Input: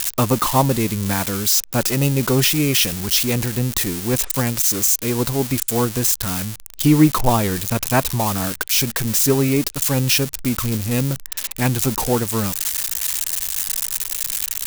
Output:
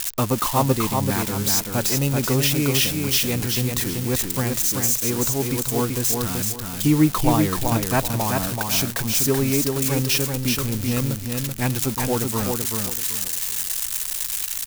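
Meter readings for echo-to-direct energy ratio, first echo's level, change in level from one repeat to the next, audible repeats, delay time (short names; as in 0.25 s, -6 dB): -3.5 dB, -4.0 dB, -11.0 dB, 3, 0.382 s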